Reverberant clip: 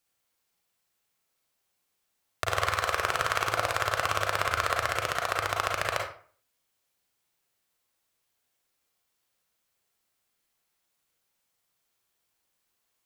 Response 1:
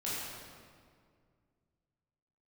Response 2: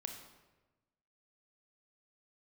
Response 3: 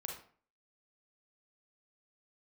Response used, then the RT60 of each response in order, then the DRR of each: 3; 2.1, 1.2, 0.45 seconds; −9.5, 4.0, 0.0 decibels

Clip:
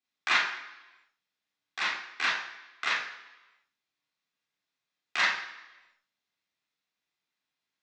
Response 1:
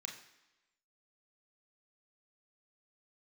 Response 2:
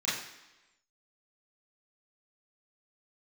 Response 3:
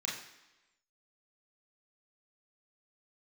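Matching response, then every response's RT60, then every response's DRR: 3; 1.0, 1.0, 1.0 seconds; 1.0, −10.5, −4.5 decibels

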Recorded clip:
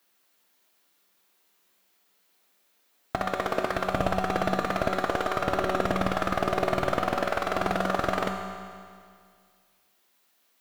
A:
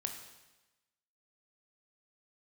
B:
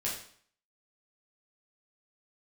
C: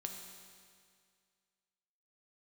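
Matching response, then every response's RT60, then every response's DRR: C; 1.1, 0.55, 2.1 seconds; 4.0, −6.0, 3.0 decibels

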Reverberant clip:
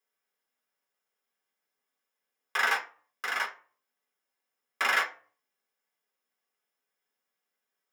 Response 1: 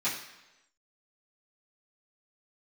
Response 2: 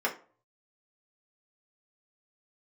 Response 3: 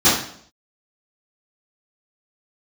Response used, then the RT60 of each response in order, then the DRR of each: 2; 1.0, 0.40, 0.60 seconds; −12.5, −3.5, −15.5 decibels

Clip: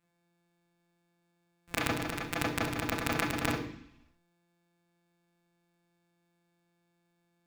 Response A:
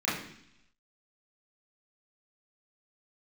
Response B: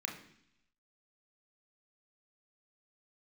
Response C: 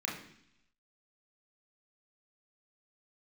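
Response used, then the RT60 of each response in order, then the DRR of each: C; 0.70, 0.70, 0.70 seconds; −10.0, 1.5, −3.0 decibels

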